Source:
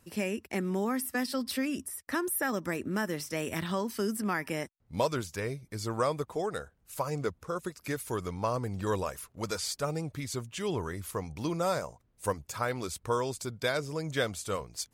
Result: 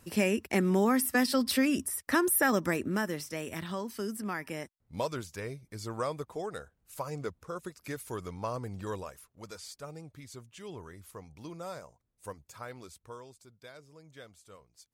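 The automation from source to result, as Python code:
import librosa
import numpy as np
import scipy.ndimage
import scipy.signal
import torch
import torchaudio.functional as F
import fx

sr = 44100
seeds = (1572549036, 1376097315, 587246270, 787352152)

y = fx.gain(x, sr, db=fx.line((2.56, 5.0), (3.45, -4.5), (8.74, -4.5), (9.32, -11.5), (12.77, -11.5), (13.43, -20.0)))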